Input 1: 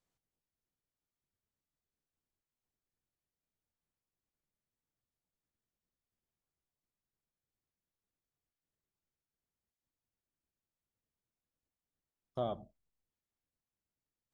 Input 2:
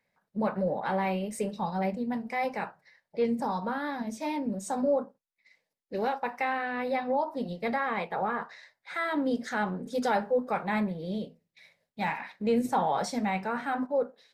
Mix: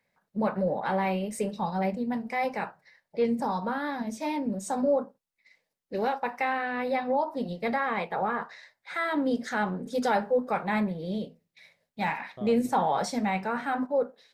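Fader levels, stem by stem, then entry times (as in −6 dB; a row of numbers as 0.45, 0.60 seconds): −6.5, +1.5 decibels; 0.00, 0.00 seconds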